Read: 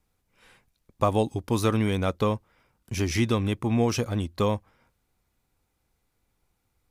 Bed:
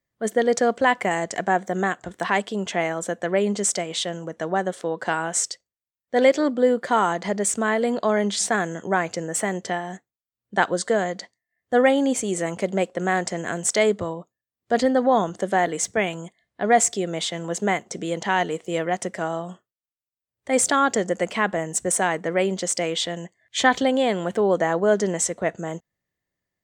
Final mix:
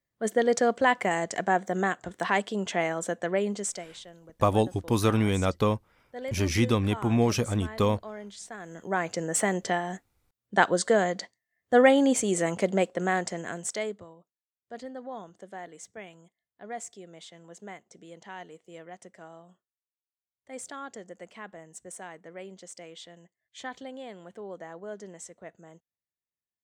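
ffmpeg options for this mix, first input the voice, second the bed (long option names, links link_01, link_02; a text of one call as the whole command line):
ffmpeg -i stem1.wav -i stem2.wav -filter_complex "[0:a]adelay=3400,volume=0dB[link_01];[1:a]volume=15dB,afade=type=out:start_time=3.17:duration=0.83:silence=0.158489,afade=type=in:start_time=8.59:duration=0.75:silence=0.11885,afade=type=out:start_time=12.62:duration=1.45:silence=0.105925[link_02];[link_01][link_02]amix=inputs=2:normalize=0" out.wav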